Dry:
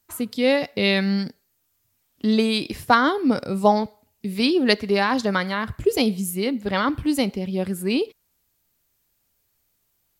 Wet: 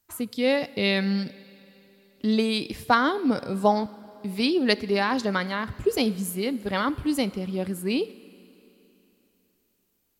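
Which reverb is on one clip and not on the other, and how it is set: Schroeder reverb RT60 3.3 s, DRR 19 dB; trim -3.5 dB

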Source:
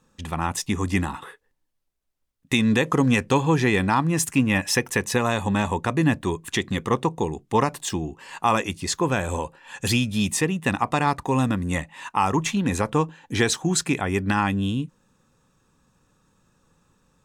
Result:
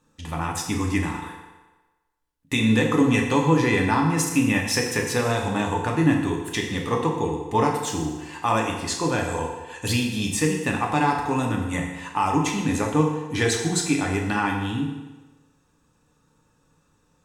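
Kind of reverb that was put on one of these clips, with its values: FDN reverb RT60 1.2 s, low-frequency decay 0.8×, high-frequency decay 0.85×, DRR -0.5 dB; trim -3.5 dB

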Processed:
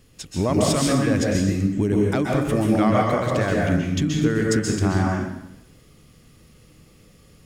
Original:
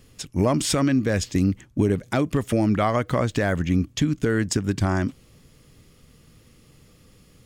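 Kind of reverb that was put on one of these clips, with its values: plate-style reverb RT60 0.86 s, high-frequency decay 0.8×, pre-delay 115 ms, DRR -2 dB; trim -2 dB

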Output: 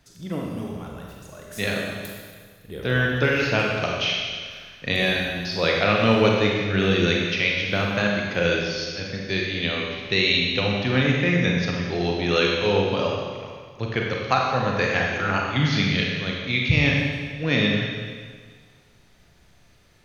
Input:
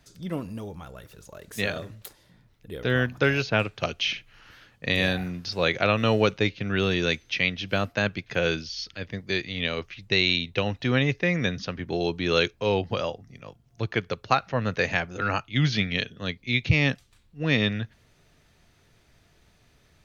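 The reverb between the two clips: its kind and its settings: Schroeder reverb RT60 1.7 s, combs from 31 ms, DRR -1.5 dB

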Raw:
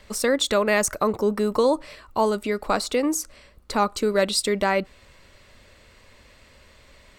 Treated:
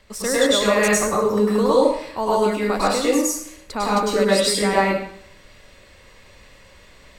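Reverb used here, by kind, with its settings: plate-style reverb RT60 0.63 s, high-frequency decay 0.9×, pre-delay 90 ms, DRR -7.5 dB; trim -4 dB

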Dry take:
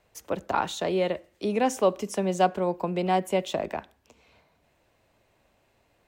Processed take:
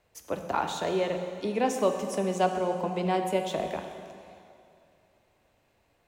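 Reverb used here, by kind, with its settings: plate-style reverb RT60 2.5 s, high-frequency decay 0.9×, DRR 5 dB; trim -3 dB

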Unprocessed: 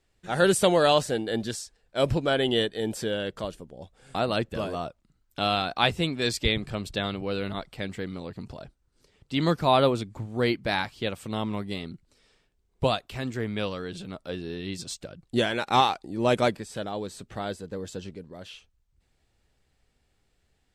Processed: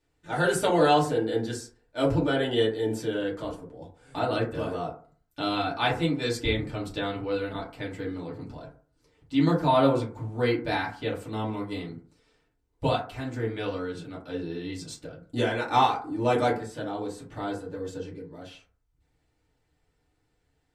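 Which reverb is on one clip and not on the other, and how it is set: FDN reverb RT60 0.44 s, low-frequency decay 0.95×, high-frequency decay 0.35×, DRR -6 dB; trim -8 dB

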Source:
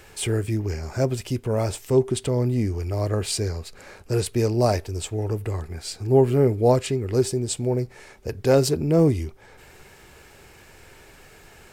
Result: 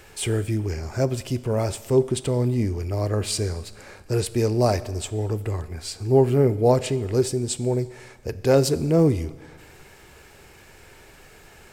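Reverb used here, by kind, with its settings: Schroeder reverb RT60 1.4 s, combs from 29 ms, DRR 16 dB

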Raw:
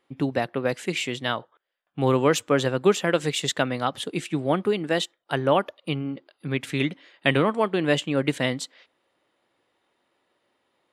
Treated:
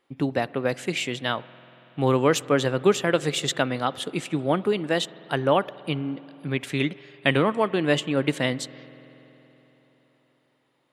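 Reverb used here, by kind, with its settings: spring tank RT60 3.9 s, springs 47 ms, chirp 35 ms, DRR 19 dB

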